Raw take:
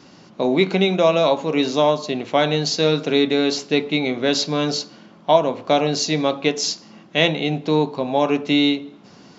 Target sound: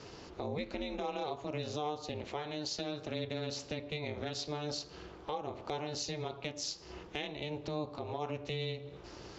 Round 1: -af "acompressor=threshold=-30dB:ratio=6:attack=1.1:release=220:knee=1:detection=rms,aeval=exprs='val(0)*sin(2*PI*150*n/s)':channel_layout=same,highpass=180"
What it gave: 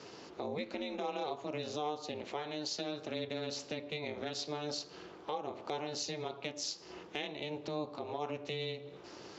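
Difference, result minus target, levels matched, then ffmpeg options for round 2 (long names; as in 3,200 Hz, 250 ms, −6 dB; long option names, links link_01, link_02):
125 Hz band −5.5 dB
-af "acompressor=threshold=-30dB:ratio=6:attack=1.1:release=220:knee=1:detection=rms,aeval=exprs='val(0)*sin(2*PI*150*n/s)':channel_layout=same,highpass=46"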